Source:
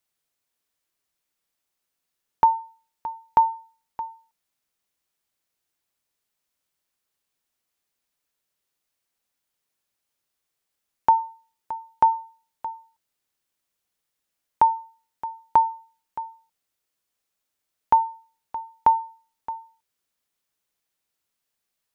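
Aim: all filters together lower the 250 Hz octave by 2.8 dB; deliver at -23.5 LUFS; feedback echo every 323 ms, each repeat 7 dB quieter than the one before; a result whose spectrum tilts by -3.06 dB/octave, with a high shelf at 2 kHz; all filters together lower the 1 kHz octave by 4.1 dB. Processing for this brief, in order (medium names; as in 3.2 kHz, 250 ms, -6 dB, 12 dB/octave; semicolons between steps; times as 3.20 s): peaking EQ 250 Hz -3.5 dB; peaking EQ 1 kHz -5 dB; treble shelf 2 kHz +3.5 dB; feedback delay 323 ms, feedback 45%, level -7 dB; trim +5.5 dB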